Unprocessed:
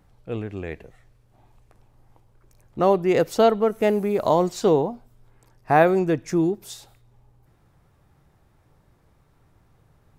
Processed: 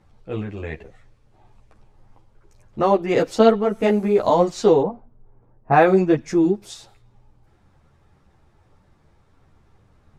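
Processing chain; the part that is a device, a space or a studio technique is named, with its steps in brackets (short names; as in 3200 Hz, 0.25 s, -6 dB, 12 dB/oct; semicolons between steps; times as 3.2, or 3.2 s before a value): string-machine ensemble chorus (ensemble effect; LPF 7700 Hz 12 dB/oct); 4.83–6.15 low-pass opened by the level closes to 730 Hz, open at -16 dBFS; gain +5.5 dB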